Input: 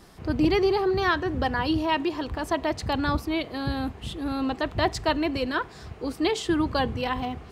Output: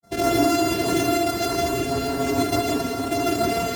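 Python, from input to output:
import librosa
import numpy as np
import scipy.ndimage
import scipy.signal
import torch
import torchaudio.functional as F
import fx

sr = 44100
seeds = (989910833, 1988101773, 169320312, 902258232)

p1 = np.r_[np.sort(x[:len(x) // 64 * 64].reshape(-1, 64), axis=1).ravel(), x[len(x) // 64 * 64:]]
p2 = scipy.signal.sosfilt(scipy.signal.butter(2, 160.0, 'highpass', fs=sr, output='sos'), p1)
p3 = fx.low_shelf(p2, sr, hz=270.0, db=9.0)
p4 = fx.granulator(p3, sr, seeds[0], grain_ms=100.0, per_s=20.0, spray_ms=100.0, spread_st=0)
p5 = fx.stretch_vocoder(p4, sr, factor=0.5)
p6 = fx.filter_lfo_notch(p5, sr, shape='sine', hz=4.7, low_hz=950.0, high_hz=3000.0, q=1.2)
p7 = p6 + fx.echo_single(p6, sr, ms=619, db=-7.0, dry=0)
y = fx.rev_gated(p7, sr, seeds[1], gate_ms=200, shape='rising', drr_db=-2.5)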